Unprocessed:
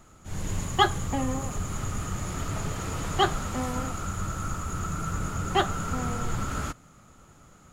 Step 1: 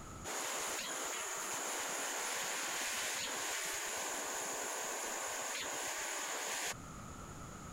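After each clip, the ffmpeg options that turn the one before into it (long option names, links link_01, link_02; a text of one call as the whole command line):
ffmpeg -i in.wav -af "acompressor=threshold=-32dB:ratio=2,afftfilt=real='re*lt(hypot(re,im),0.0224)':imag='im*lt(hypot(re,im),0.0224)':win_size=1024:overlap=0.75,volume=5.5dB" out.wav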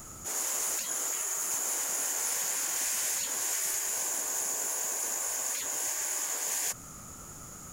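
ffmpeg -i in.wav -af "aexciter=amount=4.1:drive=4.8:freq=5300" out.wav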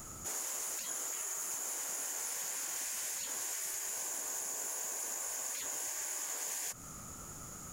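ffmpeg -i in.wav -af "acompressor=threshold=-34dB:ratio=6,volume=-2dB" out.wav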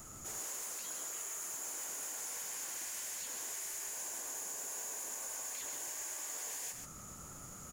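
ffmpeg -i in.wav -filter_complex "[0:a]acrossover=split=520[link_01][link_02];[link_02]volume=35dB,asoftclip=hard,volume=-35dB[link_03];[link_01][link_03]amix=inputs=2:normalize=0,aecho=1:1:132:0.562,volume=-3.5dB" out.wav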